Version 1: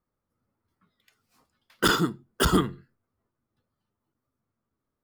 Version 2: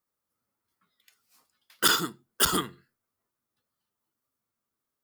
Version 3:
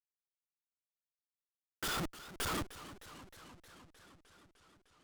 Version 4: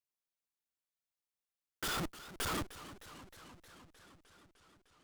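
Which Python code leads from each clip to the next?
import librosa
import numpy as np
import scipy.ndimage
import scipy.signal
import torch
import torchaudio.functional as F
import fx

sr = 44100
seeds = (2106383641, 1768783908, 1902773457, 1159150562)

y1 = fx.tilt_eq(x, sr, slope=3.0)
y1 = y1 * 10.0 ** (-3.0 / 20.0)
y2 = fx.schmitt(y1, sr, flips_db=-28.0)
y2 = fx.echo_warbled(y2, sr, ms=307, feedback_pct=74, rate_hz=2.8, cents=139, wet_db=-15)
y2 = y2 * 10.0 ** (-2.0 / 20.0)
y3 = fx.block_float(y2, sr, bits=5)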